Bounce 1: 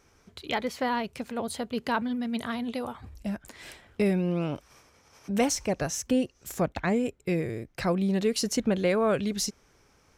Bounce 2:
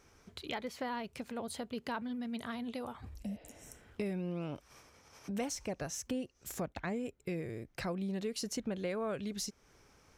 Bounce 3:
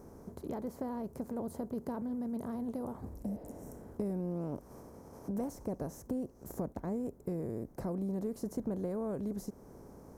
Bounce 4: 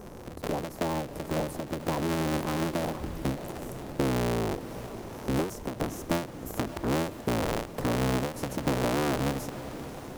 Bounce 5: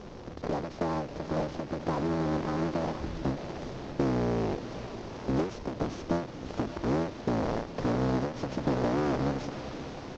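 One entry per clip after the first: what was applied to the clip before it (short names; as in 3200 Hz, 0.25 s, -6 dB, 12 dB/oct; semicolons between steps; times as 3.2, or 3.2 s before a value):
spectral repair 3.28–3.85, 290–5400 Hz both; compressor 2:1, threshold -41 dBFS, peak gain reduction 11.5 dB; gain -1.5 dB
per-bin compression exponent 0.6; EQ curve 320 Hz 0 dB, 1000 Hz -8 dB, 2900 Hz -30 dB, 14000 Hz -5 dB
cycle switcher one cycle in 3, inverted; diffused feedback echo 0.573 s, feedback 57%, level -13.5 dB; ending taper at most 130 dB/s; gain +8.5 dB
CVSD 32 kbps; echo 0.381 s -21 dB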